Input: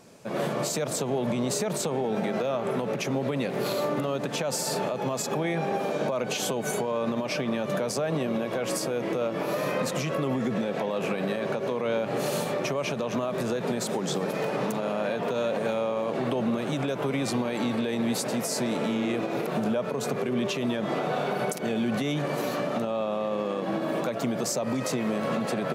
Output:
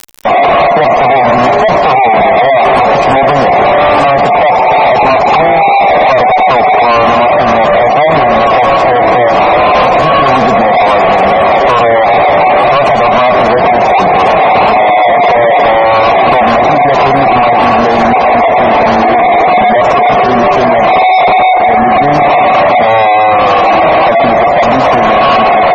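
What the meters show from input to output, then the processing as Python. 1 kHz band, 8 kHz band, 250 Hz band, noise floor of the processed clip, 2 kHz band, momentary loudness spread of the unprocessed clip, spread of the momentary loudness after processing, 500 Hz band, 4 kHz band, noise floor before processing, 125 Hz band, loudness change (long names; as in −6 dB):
+30.0 dB, can't be measured, +12.5 dB, −8 dBFS, +24.0 dB, 2 LU, 1 LU, +20.5 dB, +17.0 dB, −32 dBFS, +13.0 dB, +22.0 dB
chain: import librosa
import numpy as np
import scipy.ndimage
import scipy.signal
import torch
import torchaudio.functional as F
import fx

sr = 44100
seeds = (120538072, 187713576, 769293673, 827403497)

y = fx.formant_cascade(x, sr, vowel='a')
y = fx.dmg_crackle(y, sr, seeds[0], per_s=290.0, level_db=-60.0)
y = y + 10.0 ** (-18.0 / 20.0) * np.pad(y, (int(292 * sr / 1000.0), 0))[:len(y)]
y = fx.fuzz(y, sr, gain_db=65.0, gate_db=-56.0)
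y = fx.spec_gate(y, sr, threshold_db=-25, keep='strong')
y = y * librosa.db_to_amplitude(8.5)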